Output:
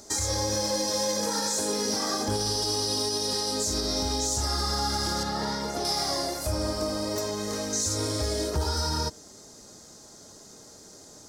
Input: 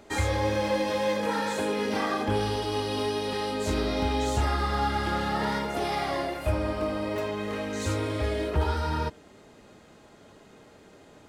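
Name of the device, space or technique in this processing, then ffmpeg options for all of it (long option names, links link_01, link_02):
over-bright horn tweeter: -filter_complex "[0:a]highshelf=frequency=3900:width_type=q:width=3:gain=13,alimiter=limit=-18dB:level=0:latency=1:release=92,asettb=1/sr,asplit=3[link_01][link_02][link_03];[link_01]atrim=end=5.234[link_04];[link_02]atrim=start=5.23:end=5.85,asetpts=PTS-STARTPTS,afade=type=in:duration=0.004:curve=qsin,afade=type=out:start_time=0.616:duration=0.004:curve=qsin,acrossover=split=4300[link_05][link_06];[link_06]acompressor=threshold=-43dB:ratio=4:attack=1:release=60[link_07];[link_05][link_07]amix=inputs=2:normalize=0[link_08];[link_03]atrim=start=5.846[link_09];[link_04][link_08]acrossfade=duration=0.004:curve1=hsin:curve2=qsin[link_10];[link_10][link_09]acrossfade=duration=0.004:curve1=qsin:curve2=hsin"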